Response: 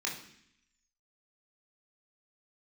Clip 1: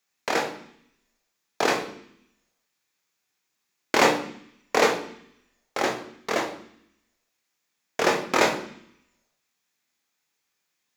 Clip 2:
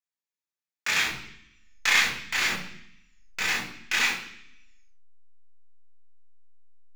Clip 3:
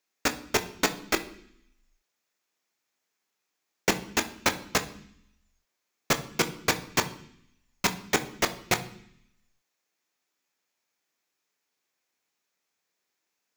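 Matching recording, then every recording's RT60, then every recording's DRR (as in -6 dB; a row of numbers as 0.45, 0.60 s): 2; 0.65, 0.65, 0.65 s; 2.5, -3.5, 8.0 dB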